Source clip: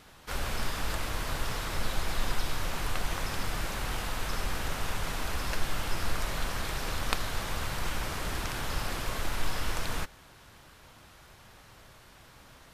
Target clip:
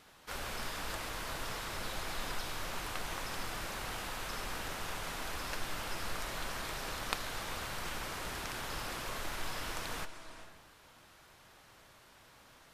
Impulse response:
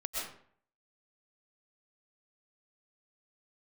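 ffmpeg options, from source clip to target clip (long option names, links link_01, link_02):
-filter_complex "[0:a]lowshelf=frequency=160:gain=-9,asplit=2[link_01][link_02];[1:a]atrim=start_sample=2205,asetrate=22050,aresample=44100,adelay=139[link_03];[link_02][link_03]afir=irnorm=-1:irlink=0,volume=-19dB[link_04];[link_01][link_04]amix=inputs=2:normalize=0,volume=-4.5dB"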